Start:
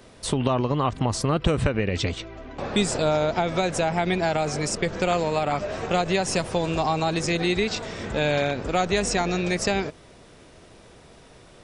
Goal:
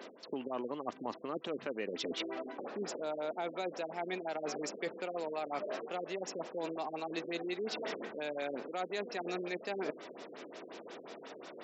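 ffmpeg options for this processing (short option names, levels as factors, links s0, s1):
-af "highpass=f=260:w=0.5412,highpass=f=260:w=1.3066,areverse,acompressor=threshold=0.0126:ratio=10,areverse,afftfilt=real='re*lt(b*sr/1024,520*pow(8000/520,0.5+0.5*sin(2*PI*5.6*pts/sr)))':imag='im*lt(b*sr/1024,520*pow(8000/520,0.5+0.5*sin(2*PI*5.6*pts/sr)))':win_size=1024:overlap=0.75,volume=1.5"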